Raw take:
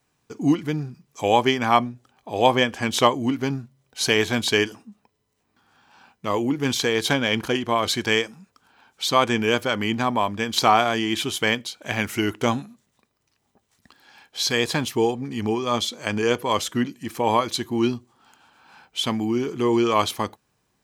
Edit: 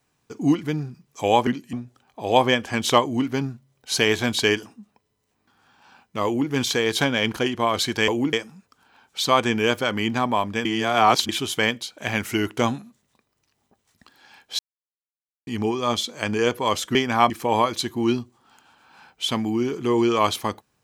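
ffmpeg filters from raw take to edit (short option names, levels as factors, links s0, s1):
-filter_complex "[0:a]asplit=11[s0][s1][s2][s3][s4][s5][s6][s7][s8][s9][s10];[s0]atrim=end=1.472[s11];[s1]atrim=start=16.788:end=17.052[s12];[s2]atrim=start=1.818:end=8.172[s13];[s3]atrim=start=6.338:end=6.592[s14];[s4]atrim=start=8.168:end=10.492[s15];[s5]atrim=start=10.488:end=11.132,asetpts=PTS-STARTPTS,areverse[s16];[s6]atrim=start=11.128:end=14.43,asetpts=PTS-STARTPTS,afade=t=out:st=3.298:d=0.004:c=hsin[s17];[s7]atrim=start=14.43:end=15.31,asetpts=PTS-STARTPTS,volume=0[s18];[s8]atrim=start=15.31:end=16.792,asetpts=PTS-STARTPTS,afade=t=in:d=0.004:c=hsin[s19];[s9]atrim=start=1.468:end=1.822[s20];[s10]atrim=start=17.048[s21];[s11][s12]acrossfade=d=0.004:c1=hsin:c2=hsin[s22];[s22][s13]acrossfade=d=0.004:c1=hsin:c2=hsin[s23];[s23][s14]acrossfade=d=0.004:c1=hsin:c2=hsin[s24];[s24][s15]acrossfade=d=0.004:c1=hsin:c2=hsin[s25];[s25][s16]acrossfade=d=0.004:c1=hsin:c2=hsin[s26];[s17][s18][s19]concat=n=3:v=0:a=1[s27];[s26][s27]acrossfade=d=0.004:c1=hsin:c2=hsin[s28];[s28][s20]acrossfade=d=0.004:c1=hsin:c2=hsin[s29];[s29][s21]acrossfade=d=0.004:c1=hsin:c2=hsin"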